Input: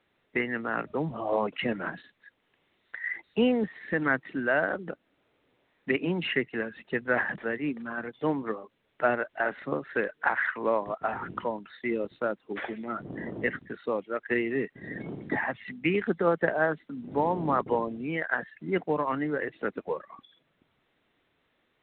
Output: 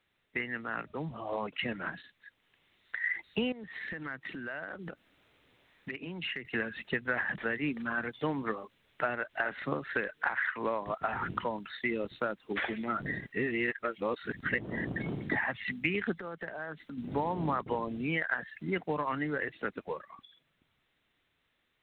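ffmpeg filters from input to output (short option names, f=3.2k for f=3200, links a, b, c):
-filter_complex "[0:a]asettb=1/sr,asplit=3[a][b][c];[a]atrim=end=3.524[d];[b]atrim=start=3.52:end=6.45,asetpts=PTS-STARTPTS,afade=t=in:d=0.004:c=qsin,afade=t=out:st=2.926:d=0.004:c=qsin,acompressor=threshold=-41dB:ratio=5:attack=3.2:release=140:knee=1:detection=peak[e];[c]atrim=start=6.446[f];[d][e]acrossfade=d=0.004:c1=hsin:c2=qsin[g];[g][f]acrossfade=d=0.004:c1=qsin:c2=hsin,asettb=1/sr,asplit=3[h][i][j];[h]atrim=end=16.144[k];[i]atrim=start=16.14:end=16.98,asetpts=PTS-STARTPTS,afade=t=in:d=0.004:c=qsin,afade=t=out:st=0.836:d=0.004:c=qsin,acompressor=threshold=-41dB:ratio=4:attack=3.2:release=140:knee=1:detection=peak[l];[j]atrim=start=16.976[m];[k][l]acrossfade=d=0.004:c1=hsin:c2=qsin[n];[n][m]acrossfade=d=0.004:c1=qsin:c2=hsin,asplit=3[o][p][q];[o]atrim=end=13.062[r];[p]atrim=start=13.058:end=14.962,asetpts=PTS-STARTPTS,areverse[s];[q]atrim=start=14.958[t];[r][s]acrossfade=d=0.004:c1=hsin:c2=hsin[u];[u][t]acrossfade=d=0.004:c1=hsin:c2=hsin,dynaudnorm=f=290:g=21:m=11.5dB,equalizer=f=430:w=0.35:g=-9.5,acompressor=threshold=-28dB:ratio=6"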